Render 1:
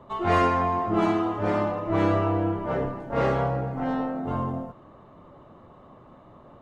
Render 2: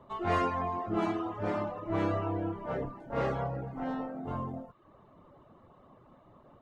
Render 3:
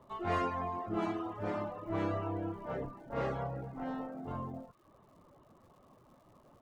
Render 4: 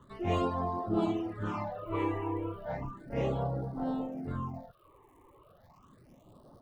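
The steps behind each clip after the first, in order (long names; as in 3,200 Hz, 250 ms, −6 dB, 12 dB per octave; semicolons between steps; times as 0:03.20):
reverb reduction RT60 0.56 s; level −6.5 dB
surface crackle 210 per second −56 dBFS; level −4 dB
all-pass phaser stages 8, 0.34 Hz, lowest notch 180–2,400 Hz; level +5.5 dB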